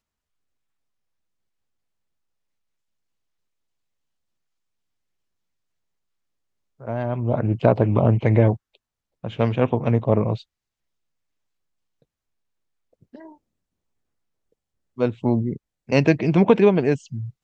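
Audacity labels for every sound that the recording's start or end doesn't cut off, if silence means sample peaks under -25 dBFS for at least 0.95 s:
6.880000	10.350000	sound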